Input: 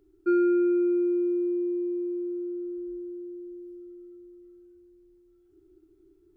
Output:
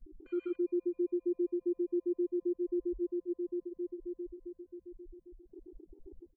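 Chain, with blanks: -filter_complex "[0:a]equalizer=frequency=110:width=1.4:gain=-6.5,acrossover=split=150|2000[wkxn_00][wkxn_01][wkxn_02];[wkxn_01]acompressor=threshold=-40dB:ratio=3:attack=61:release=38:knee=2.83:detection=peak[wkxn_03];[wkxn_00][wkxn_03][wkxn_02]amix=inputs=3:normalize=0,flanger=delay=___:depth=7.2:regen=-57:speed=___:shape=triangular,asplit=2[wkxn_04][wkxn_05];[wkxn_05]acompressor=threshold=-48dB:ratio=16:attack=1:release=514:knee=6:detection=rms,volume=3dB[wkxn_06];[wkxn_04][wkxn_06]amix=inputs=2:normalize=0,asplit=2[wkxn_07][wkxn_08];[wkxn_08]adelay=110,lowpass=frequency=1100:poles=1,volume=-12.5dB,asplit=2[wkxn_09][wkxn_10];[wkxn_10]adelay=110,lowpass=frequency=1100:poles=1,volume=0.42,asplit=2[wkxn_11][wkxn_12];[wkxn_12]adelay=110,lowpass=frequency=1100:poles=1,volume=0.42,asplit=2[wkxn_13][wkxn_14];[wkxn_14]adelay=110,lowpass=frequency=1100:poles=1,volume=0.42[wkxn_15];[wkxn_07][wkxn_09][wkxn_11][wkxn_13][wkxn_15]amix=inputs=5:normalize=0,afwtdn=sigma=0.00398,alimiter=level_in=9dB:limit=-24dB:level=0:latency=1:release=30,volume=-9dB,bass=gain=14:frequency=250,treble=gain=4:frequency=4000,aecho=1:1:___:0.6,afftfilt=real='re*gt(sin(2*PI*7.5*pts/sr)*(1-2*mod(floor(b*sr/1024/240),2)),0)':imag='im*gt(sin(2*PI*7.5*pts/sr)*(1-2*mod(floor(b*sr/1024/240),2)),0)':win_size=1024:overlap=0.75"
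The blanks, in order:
7.8, 0.72, 2.5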